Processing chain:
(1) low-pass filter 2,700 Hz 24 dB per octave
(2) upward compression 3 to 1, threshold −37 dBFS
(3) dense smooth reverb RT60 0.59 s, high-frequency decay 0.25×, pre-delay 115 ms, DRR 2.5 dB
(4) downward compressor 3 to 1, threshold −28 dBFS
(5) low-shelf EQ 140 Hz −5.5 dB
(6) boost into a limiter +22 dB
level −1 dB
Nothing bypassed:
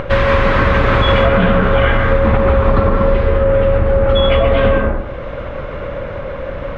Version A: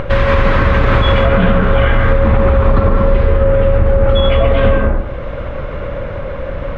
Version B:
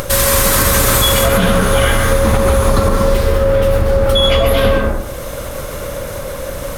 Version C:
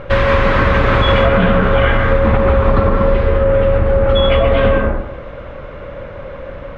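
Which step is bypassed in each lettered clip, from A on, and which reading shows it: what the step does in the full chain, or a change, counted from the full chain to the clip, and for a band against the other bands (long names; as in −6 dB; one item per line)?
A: 5, 125 Hz band +3.5 dB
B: 1, 4 kHz band +7.5 dB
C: 2, change in momentary loudness spread +5 LU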